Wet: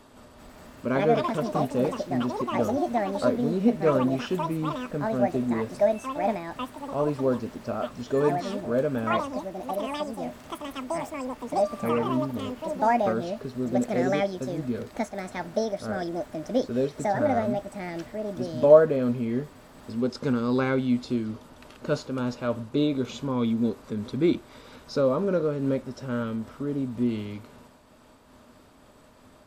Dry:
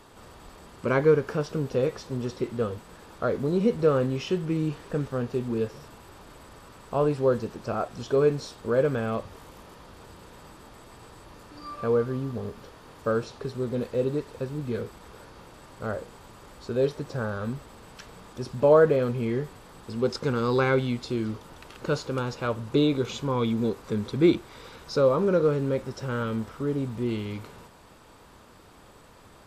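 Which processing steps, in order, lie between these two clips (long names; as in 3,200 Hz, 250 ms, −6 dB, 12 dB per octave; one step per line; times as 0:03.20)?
delay with pitch and tempo change per echo 385 ms, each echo +7 semitones, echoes 2
hollow resonant body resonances 250/610 Hz, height 11 dB, ringing for 85 ms
amplitude modulation by smooth noise, depth 50%
level −1 dB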